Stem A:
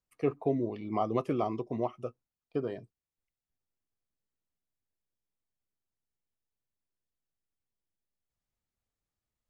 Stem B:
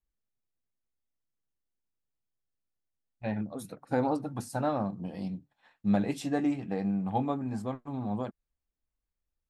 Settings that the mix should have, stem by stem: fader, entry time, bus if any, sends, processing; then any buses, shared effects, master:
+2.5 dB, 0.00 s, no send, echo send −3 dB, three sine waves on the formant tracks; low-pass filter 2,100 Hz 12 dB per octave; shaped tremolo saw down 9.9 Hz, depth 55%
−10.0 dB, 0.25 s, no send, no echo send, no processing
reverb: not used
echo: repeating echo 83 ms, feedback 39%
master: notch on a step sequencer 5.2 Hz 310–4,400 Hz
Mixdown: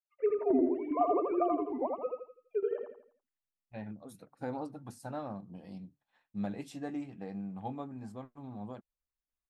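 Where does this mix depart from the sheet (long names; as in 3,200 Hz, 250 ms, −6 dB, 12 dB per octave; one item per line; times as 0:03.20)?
stem B: entry 0.25 s → 0.50 s
master: missing notch on a step sequencer 5.2 Hz 310–4,400 Hz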